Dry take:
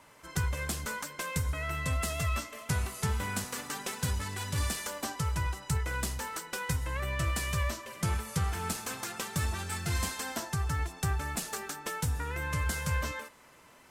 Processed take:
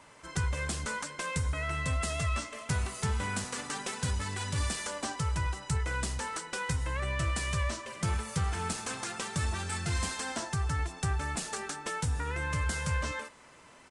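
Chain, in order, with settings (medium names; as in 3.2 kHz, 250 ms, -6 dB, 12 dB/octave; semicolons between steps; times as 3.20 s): in parallel at -1 dB: peak limiter -28 dBFS, peak gain reduction 8 dB; on the sum: resampled via 22.05 kHz; trim -3.5 dB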